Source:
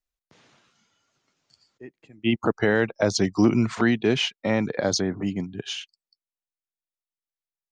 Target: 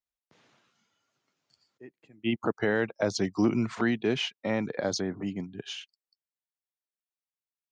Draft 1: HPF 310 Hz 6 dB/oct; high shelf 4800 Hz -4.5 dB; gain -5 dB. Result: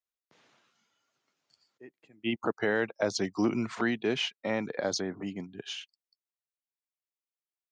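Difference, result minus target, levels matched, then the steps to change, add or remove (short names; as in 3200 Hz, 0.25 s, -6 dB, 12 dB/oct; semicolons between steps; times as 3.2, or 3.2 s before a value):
125 Hz band -3.5 dB
change: HPF 110 Hz 6 dB/oct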